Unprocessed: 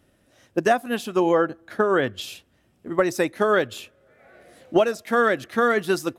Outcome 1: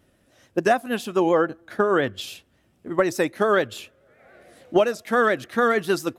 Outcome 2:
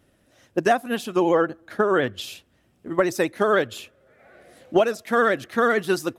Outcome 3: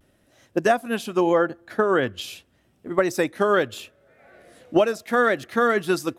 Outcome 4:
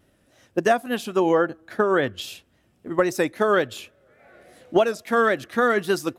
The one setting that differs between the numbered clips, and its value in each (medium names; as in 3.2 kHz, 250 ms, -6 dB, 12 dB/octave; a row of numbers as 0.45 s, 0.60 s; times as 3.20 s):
vibrato, rate: 7 Hz, 16 Hz, 0.8 Hz, 3.6 Hz